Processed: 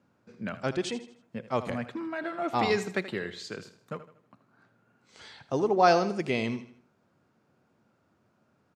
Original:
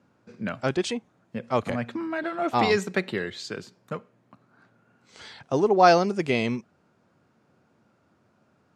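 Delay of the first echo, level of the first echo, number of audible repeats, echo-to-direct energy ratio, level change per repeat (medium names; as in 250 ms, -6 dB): 79 ms, -13.5 dB, 3, -12.5 dB, -7.5 dB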